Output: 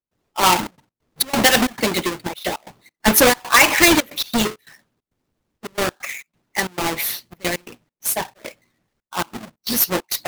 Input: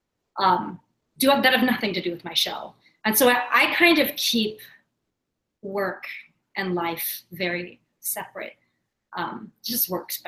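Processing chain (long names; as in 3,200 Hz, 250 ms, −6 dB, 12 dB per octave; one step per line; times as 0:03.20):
each half-wave held at its own peak
harmonic and percussive parts rebalanced percussive +7 dB
gate pattern ".xxxxx.x.xx.xxx" 135 BPM −24 dB
level −2.5 dB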